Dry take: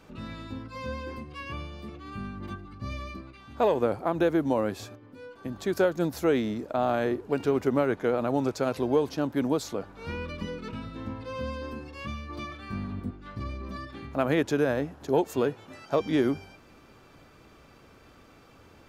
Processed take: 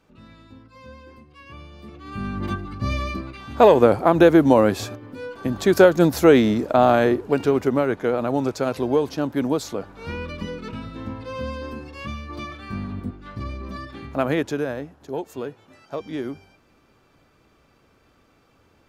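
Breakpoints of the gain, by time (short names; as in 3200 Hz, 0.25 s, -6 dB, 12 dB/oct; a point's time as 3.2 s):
1.33 s -8 dB
1.96 s +1 dB
2.37 s +11 dB
6.77 s +11 dB
7.79 s +4 dB
14.22 s +4 dB
14.98 s -5 dB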